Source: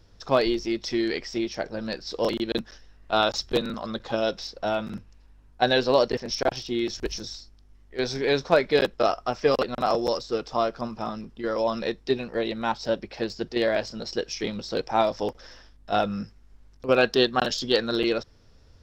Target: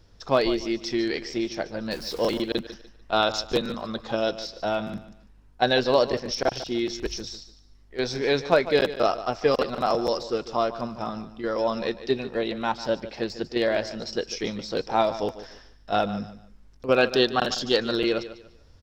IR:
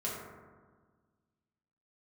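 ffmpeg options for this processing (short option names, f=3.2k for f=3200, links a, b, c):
-filter_complex "[0:a]asettb=1/sr,asplit=3[a][b][c];[a]atrim=end=1.914[d];[b]atrim=start=1.91:end=2.42,asetpts=PTS-STARTPTS,afade=t=in:d=0.004:c=qsin,afade=t=out:st=0.506:d=0.004:c=qsin,aeval=exprs='val(0)+0.5*0.0141*sgn(val(0))':c=same[e];[c]atrim=start=2.416[f];[d][e]acrossfade=d=0.004:c1=hsin:c2=qsin[g];[g][f]acrossfade=d=0.004:c1=qsin:c2=hsin,aecho=1:1:147|294|441:0.2|0.0559|0.0156"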